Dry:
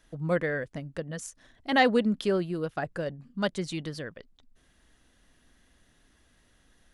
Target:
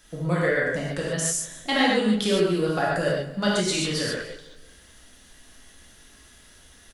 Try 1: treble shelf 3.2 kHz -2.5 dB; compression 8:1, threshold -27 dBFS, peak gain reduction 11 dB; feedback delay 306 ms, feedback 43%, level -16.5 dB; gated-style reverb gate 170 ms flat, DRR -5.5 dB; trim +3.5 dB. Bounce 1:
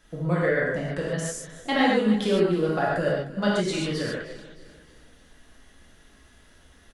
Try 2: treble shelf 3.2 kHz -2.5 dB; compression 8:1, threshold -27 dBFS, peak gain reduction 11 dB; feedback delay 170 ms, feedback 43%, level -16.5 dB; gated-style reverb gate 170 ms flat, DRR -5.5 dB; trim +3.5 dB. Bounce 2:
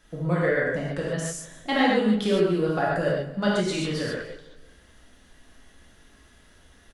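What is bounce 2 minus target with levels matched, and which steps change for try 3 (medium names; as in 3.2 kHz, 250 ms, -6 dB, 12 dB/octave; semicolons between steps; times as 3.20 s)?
8 kHz band -8.5 dB
change: treble shelf 3.2 kHz +9 dB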